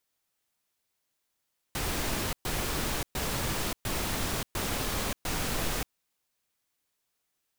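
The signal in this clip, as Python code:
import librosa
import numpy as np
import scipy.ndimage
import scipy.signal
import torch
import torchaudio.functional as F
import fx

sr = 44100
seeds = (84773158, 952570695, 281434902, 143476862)

y = fx.noise_burst(sr, seeds[0], colour='pink', on_s=0.58, off_s=0.12, bursts=6, level_db=-31.0)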